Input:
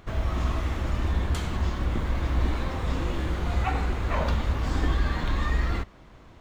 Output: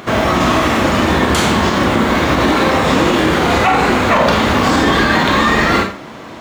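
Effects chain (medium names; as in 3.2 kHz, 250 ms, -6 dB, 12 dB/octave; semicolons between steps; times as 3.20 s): high-pass 200 Hz 12 dB/octave; Schroeder reverb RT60 0.34 s, combs from 28 ms, DRR 4 dB; loudness maximiser +23 dB; trim -2 dB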